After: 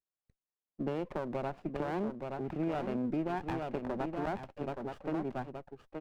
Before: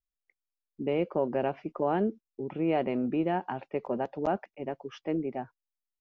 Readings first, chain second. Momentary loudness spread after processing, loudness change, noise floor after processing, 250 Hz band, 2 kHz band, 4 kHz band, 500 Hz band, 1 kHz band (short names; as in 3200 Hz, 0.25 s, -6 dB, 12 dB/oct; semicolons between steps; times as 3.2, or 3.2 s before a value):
6 LU, -5.5 dB, under -85 dBFS, -4.5 dB, -3.5 dB, -4.5 dB, -6.5 dB, -5.0 dB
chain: LPF 2500 Hz 12 dB/oct; echo 0.873 s -8 dB; compressor, threshold -28 dBFS, peak gain reduction 6.5 dB; dynamic EQ 470 Hz, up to -4 dB, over -42 dBFS, Q 2.4; HPF 97 Hz 24 dB/oct; running maximum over 17 samples